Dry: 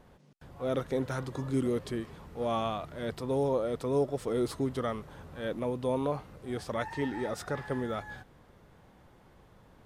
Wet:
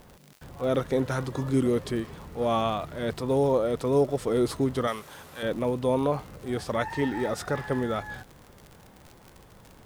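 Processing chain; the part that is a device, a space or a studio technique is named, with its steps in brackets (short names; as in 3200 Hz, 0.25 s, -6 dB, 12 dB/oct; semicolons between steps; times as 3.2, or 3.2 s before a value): 4.87–5.43 tilt +3.5 dB/oct; vinyl LP (crackle 71/s -42 dBFS; white noise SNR 39 dB); gain +5.5 dB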